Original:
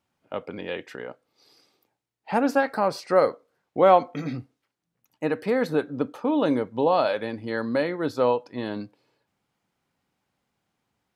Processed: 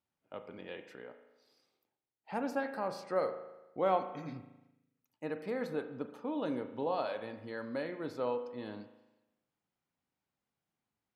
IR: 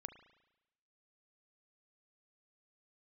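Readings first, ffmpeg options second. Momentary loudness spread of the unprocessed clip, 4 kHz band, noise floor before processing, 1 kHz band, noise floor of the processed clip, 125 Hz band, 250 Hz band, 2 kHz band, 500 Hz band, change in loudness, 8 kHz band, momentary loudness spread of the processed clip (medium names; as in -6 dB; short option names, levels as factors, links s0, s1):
15 LU, -13.0 dB, -82 dBFS, -13.0 dB, under -85 dBFS, -13.0 dB, -13.0 dB, -13.0 dB, -13.0 dB, -13.0 dB, no reading, 14 LU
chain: -filter_complex "[1:a]atrim=start_sample=2205,asetrate=41895,aresample=44100[s0];[0:a][s0]afir=irnorm=-1:irlink=0,volume=0.398"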